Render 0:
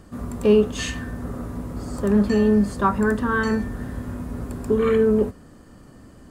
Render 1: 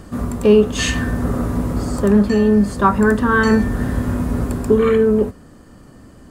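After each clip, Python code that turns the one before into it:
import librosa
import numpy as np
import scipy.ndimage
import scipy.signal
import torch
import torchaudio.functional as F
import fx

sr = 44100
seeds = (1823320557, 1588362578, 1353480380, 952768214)

y = fx.rider(x, sr, range_db=4, speed_s=0.5)
y = F.gain(torch.from_numpy(y), 7.0).numpy()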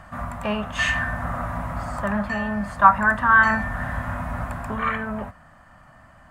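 y = fx.curve_eq(x, sr, hz=(160.0, 440.0, 630.0, 1900.0, 4600.0), db=(0, -17, 10, 12, -4))
y = F.gain(torch.from_numpy(y), -8.5).numpy()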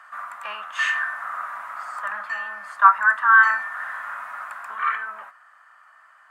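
y = fx.highpass_res(x, sr, hz=1300.0, q=2.5)
y = F.gain(torch.from_numpy(y), -4.5).numpy()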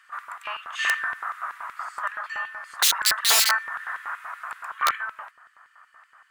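y = (np.mod(10.0 ** (13.0 / 20.0) * x + 1.0, 2.0) - 1.0) / 10.0 ** (13.0 / 20.0)
y = fx.filter_lfo_highpass(y, sr, shape='square', hz=5.3, low_hz=720.0, high_hz=2800.0, q=1.1)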